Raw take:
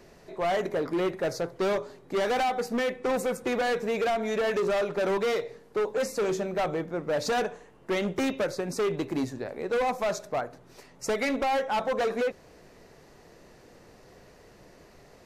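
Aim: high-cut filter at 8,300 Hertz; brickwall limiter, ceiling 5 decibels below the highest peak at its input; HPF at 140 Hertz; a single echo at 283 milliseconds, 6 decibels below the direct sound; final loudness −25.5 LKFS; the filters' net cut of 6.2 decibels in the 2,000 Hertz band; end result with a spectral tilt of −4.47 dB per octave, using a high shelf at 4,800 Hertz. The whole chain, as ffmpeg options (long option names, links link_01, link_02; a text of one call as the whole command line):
ffmpeg -i in.wav -af "highpass=140,lowpass=8300,equalizer=frequency=2000:width_type=o:gain=-8.5,highshelf=frequency=4800:gain=3.5,alimiter=limit=-24dB:level=0:latency=1,aecho=1:1:283:0.501,volume=5.5dB" out.wav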